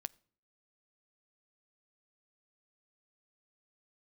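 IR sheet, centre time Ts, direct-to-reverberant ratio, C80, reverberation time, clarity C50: 1 ms, 17.0 dB, 29.5 dB, 0.50 s, 26.5 dB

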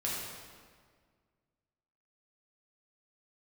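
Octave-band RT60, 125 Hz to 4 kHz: 2.2, 2.1, 1.9, 1.7, 1.5, 1.3 seconds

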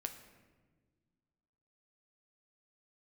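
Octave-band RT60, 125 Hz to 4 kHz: 2.2, 2.2, 1.7, 1.2, 1.1, 0.85 seconds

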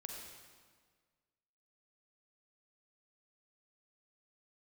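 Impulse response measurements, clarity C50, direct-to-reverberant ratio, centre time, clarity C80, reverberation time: 1.0 dB, 0.5 dB, 75 ms, 2.5 dB, 1.6 s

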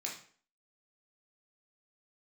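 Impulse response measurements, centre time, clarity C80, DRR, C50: 29 ms, 11.0 dB, −3.0 dB, 6.5 dB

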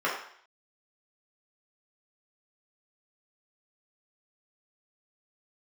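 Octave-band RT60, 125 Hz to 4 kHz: 0.45, 0.55, 0.55, 0.60, 0.65, 0.60 seconds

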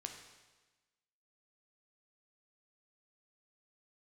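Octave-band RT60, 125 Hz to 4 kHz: 1.3, 1.3, 1.2, 1.2, 1.2, 1.2 seconds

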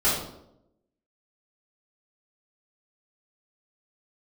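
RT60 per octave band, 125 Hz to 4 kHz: 0.95, 1.0, 0.90, 0.70, 0.55, 0.55 seconds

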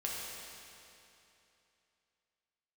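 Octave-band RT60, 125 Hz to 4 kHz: 2.9, 2.9, 2.9, 2.9, 2.8, 2.7 seconds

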